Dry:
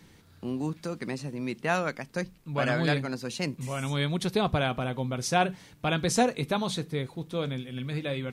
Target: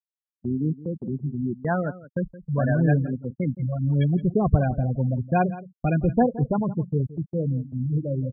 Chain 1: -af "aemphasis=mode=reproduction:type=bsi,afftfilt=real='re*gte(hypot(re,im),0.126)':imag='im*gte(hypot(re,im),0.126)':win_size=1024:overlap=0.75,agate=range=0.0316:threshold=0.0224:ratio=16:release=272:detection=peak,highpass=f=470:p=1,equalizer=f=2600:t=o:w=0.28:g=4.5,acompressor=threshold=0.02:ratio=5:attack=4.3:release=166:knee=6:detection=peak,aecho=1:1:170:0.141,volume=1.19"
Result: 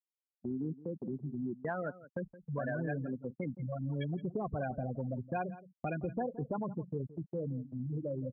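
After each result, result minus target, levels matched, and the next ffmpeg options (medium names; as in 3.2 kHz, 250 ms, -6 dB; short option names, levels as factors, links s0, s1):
compression: peak gain reduction +14 dB; 500 Hz band +3.0 dB
-af "aemphasis=mode=reproduction:type=bsi,afftfilt=real='re*gte(hypot(re,im),0.126)':imag='im*gte(hypot(re,im),0.126)':win_size=1024:overlap=0.75,agate=range=0.0316:threshold=0.0224:ratio=16:release=272:detection=peak,highpass=f=470:p=1,equalizer=f=2600:t=o:w=0.28:g=4.5,aecho=1:1:170:0.141,volume=1.19"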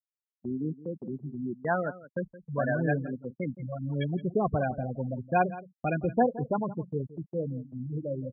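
500 Hz band +4.0 dB
-af "aemphasis=mode=reproduction:type=bsi,afftfilt=real='re*gte(hypot(re,im),0.126)':imag='im*gte(hypot(re,im),0.126)':win_size=1024:overlap=0.75,agate=range=0.0316:threshold=0.0224:ratio=16:release=272:detection=peak,equalizer=f=2600:t=o:w=0.28:g=4.5,aecho=1:1:170:0.141,volume=1.19"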